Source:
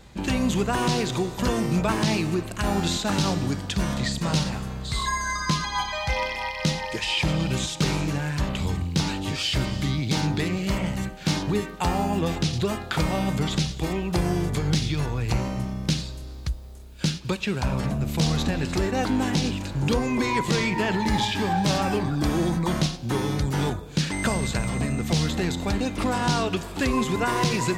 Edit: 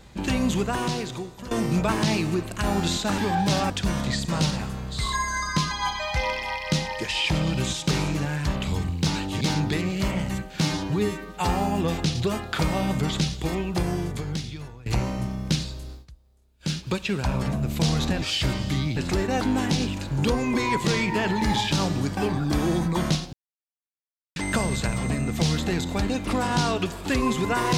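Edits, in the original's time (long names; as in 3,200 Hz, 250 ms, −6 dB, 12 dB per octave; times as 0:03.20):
0:00.47–0:01.51: fade out, to −16 dB
0:03.18–0:03.63: swap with 0:21.36–0:21.88
0:09.34–0:10.08: move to 0:18.60
0:11.29–0:11.87: time-stretch 1.5×
0:13.95–0:15.24: fade out, to −20.5 dB
0:16.29–0:17.12: duck −19.5 dB, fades 0.15 s
0:23.04–0:24.07: silence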